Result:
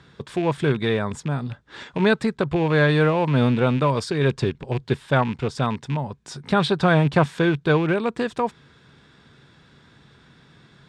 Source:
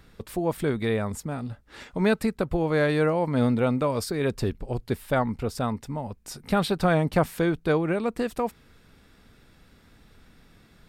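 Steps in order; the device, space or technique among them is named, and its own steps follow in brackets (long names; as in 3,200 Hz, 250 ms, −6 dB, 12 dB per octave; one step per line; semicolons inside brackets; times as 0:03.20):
car door speaker with a rattle (loose part that buzzes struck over −31 dBFS, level −30 dBFS; loudspeaker in its box 83–7,900 Hz, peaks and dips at 140 Hz +10 dB, 380 Hz +4 dB, 1,000 Hz +6 dB, 1,600 Hz +6 dB, 3,500 Hz +7 dB)
level +1.5 dB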